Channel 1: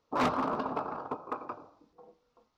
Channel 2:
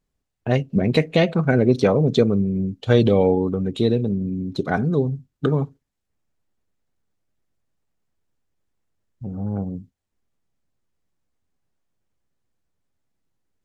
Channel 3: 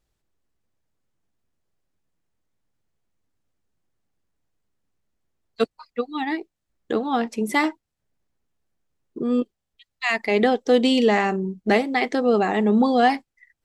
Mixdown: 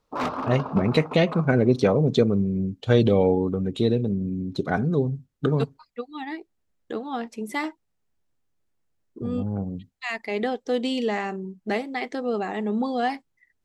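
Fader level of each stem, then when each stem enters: +0.5, −2.5, −7.5 decibels; 0.00, 0.00, 0.00 seconds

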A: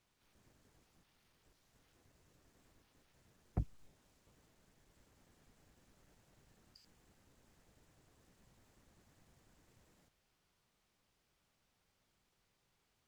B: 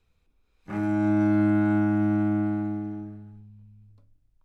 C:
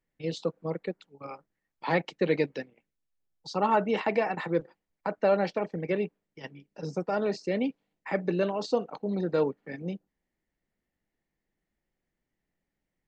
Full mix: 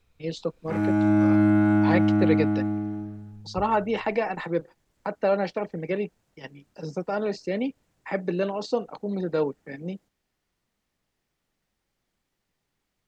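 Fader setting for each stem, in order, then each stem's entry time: −1.5, +2.5, +1.0 decibels; 0.00, 0.00, 0.00 seconds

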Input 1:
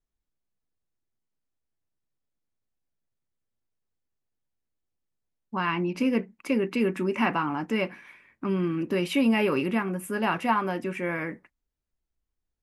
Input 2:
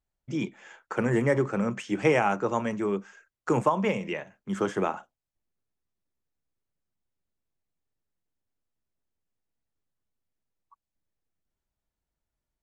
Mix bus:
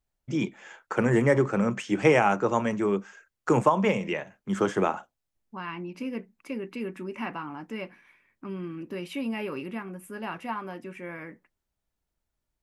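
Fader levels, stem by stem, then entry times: −9.0, +2.5 decibels; 0.00, 0.00 seconds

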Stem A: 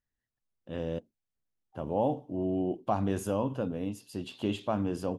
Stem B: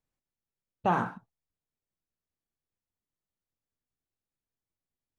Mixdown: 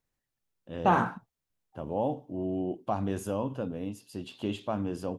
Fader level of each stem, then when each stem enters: −1.5, +3.0 decibels; 0.00, 0.00 seconds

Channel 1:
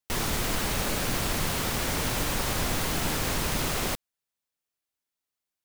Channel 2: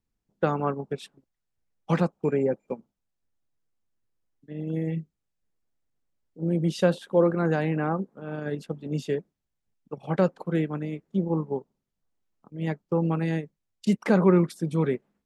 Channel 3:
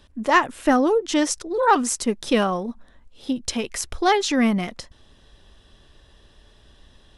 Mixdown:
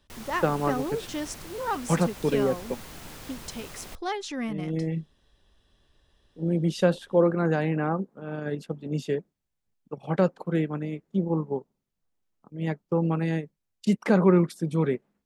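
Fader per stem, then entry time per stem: −15.0, 0.0, −12.5 decibels; 0.00, 0.00, 0.00 seconds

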